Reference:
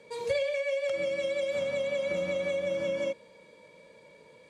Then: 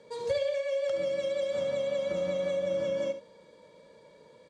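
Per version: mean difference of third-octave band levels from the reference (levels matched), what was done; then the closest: 2.0 dB: low-pass 7.8 kHz 12 dB/octave; peaking EQ 2.4 kHz -10.5 dB 0.44 oct; on a send: delay 71 ms -11 dB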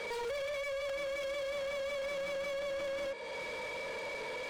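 10.0 dB: bass shelf 260 Hz -8 dB; compression 5:1, threshold -45 dBFS, peak gain reduction 17 dB; overdrive pedal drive 30 dB, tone 2.7 kHz, clips at -35 dBFS; trim +3.5 dB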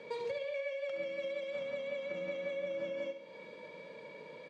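5.0 dB: compression 12:1, threshold -41 dBFS, peak gain reduction 17 dB; band-pass 160–3900 Hz; feedback delay 69 ms, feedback 53%, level -10 dB; trim +5 dB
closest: first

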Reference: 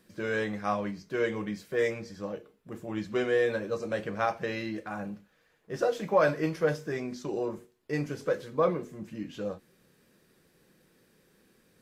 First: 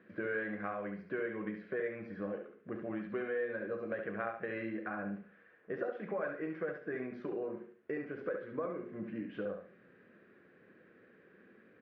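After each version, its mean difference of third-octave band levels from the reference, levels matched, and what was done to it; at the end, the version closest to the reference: 7.0 dB: compression 6:1, threshold -39 dBFS, peak gain reduction 19 dB; cabinet simulation 140–2200 Hz, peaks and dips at 150 Hz -9 dB, 890 Hz -9 dB, 1.6 kHz +4 dB; feedback delay 70 ms, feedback 29%, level -6 dB; trim +3.5 dB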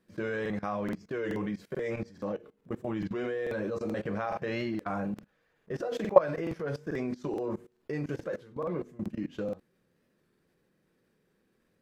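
4.5 dB: treble shelf 3.2 kHz -9.5 dB; level held to a coarse grid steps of 20 dB; crackling interface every 0.43 s, samples 2048, repeat, from 0.41 s; warped record 33 1/3 rpm, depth 100 cents; trim +7.5 dB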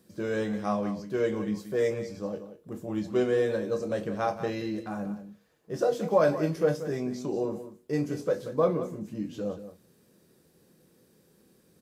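3.0 dB: high-pass 54 Hz; peaking EQ 2 kHz -9.5 dB 1.9 oct; doubling 24 ms -11 dB; delay 181 ms -12 dB; trim +3 dB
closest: third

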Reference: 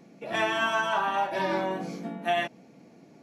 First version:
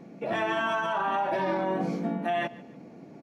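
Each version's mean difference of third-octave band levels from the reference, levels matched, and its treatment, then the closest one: 4.0 dB: treble shelf 2.7 kHz -12 dB; peak limiter -26.5 dBFS, peak gain reduction 10 dB; feedback delay 146 ms, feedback 29%, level -20 dB; trim +6.5 dB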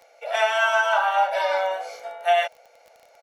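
8.5 dB: elliptic high-pass 500 Hz, stop band 60 dB; comb 1.4 ms, depth 56%; crackle 12 per s -42 dBFS; trim +5 dB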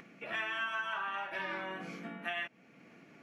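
5.0 dB: upward compressor, threshold -44 dBFS; high-order bell 1.9 kHz +12 dB; compression 2.5:1, threshold -30 dBFS, peak gain reduction 12 dB; trim -8.5 dB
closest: first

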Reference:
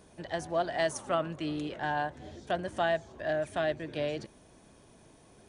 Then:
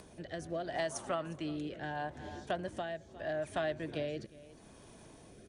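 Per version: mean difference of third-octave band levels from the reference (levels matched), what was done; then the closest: 3.5 dB: on a send: delay 358 ms -19.5 dB; on the sum: compression, threshold -30 dBFS, peak gain reduction 7 dB; rotary cabinet horn 0.75 Hz; upward compressor, threshold -49 dBFS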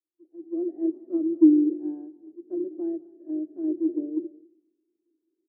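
17.0 dB: level rider gain up to 11 dB; Butterworth band-pass 330 Hz, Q 6; multi-tap echo 205/258 ms -18.5/-17.5 dB; three bands expanded up and down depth 100%; trim +5.5 dB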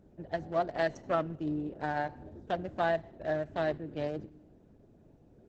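5.0 dB: local Wiener filter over 41 samples; dynamic bell 3.1 kHz, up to -7 dB, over -59 dBFS, Q 5.6; FDN reverb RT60 0.84 s, low-frequency decay 1.45×, high-frequency decay 1×, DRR 20 dB; trim +1 dB; Opus 10 kbps 48 kHz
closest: first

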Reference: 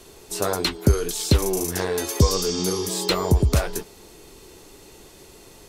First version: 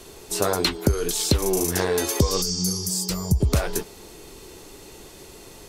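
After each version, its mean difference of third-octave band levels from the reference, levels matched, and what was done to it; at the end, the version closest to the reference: 3.5 dB: time-frequency box 2.42–3.41 s, 210–4400 Hz -15 dB; compression 6:1, threshold -19 dBFS, peak gain reduction 8 dB; trim +3 dB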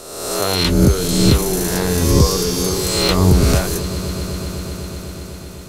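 7.5 dB: reverse spectral sustain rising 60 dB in 1.17 s; on a send: echo with a slow build-up 125 ms, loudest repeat 5, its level -18 dB; on the sum: trim +1.5 dB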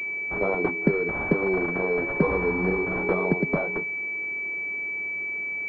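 13.0 dB: elliptic high-pass 160 Hz; class-D stage that switches slowly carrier 2.3 kHz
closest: first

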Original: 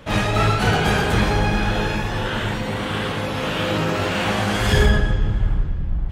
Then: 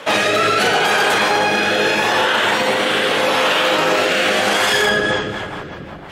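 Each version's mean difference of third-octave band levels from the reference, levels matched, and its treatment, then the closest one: 6.0 dB: high-pass 490 Hz 12 dB/octave; rotary cabinet horn 0.75 Hz, later 6 Hz, at 4.59 s; loudness maximiser +23 dB; trim -6 dB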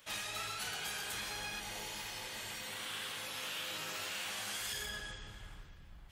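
10.0 dB: pre-emphasis filter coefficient 0.97; spectral replace 1.62–2.57 s, 910–5100 Hz after; compression, threshold -35 dBFS, peak gain reduction 7.5 dB; trim -2.5 dB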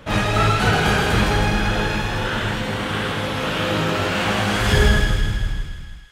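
2.5 dB: fade out at the end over 0.97 s; peaking EQ 1.4 kHz +2.5 dB 0.45 oct; on a send: feedback echo behind a high-pass 160 ms, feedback 63%, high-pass 2 kHz, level -4 dB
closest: third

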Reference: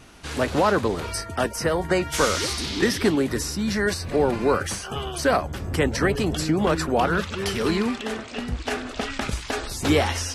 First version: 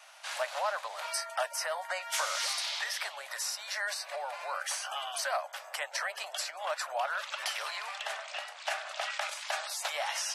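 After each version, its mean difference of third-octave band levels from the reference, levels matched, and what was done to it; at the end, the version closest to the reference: 15.0 dB: compression 5:1, threshold -23 dBFS, peak gain reduction 8 dB; Chebyshev high-pass 590 Hz, order 6; trim -2.5 dB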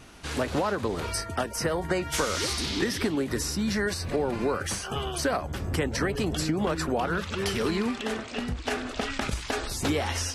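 2.5 dB: compression, threshold -22 dBFS, peak gain reduction 7.5 dB; endings held to a fixed fall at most 180 dB/s; trim -1 dB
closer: second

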